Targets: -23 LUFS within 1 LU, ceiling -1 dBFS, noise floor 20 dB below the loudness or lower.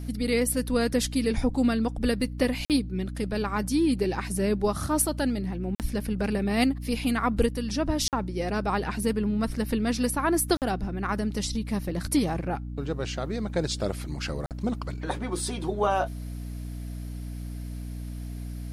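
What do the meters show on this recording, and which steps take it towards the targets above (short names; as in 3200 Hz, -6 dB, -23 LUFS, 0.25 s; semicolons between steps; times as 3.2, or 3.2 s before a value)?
dropouts 5; longest dropout 48 ms; hum 60 Hz; harmonics up to 300 Hz; hum level -33 dBFS; loudness -28.0 LUFS; peak -10.0 dBFS; loudness target -23.0 LUFS
-> interpolate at 2.65/5.75/8.08/10.57/14.46, 48 ms; notches 60/120/180/240/300 Hz; gain +5 dB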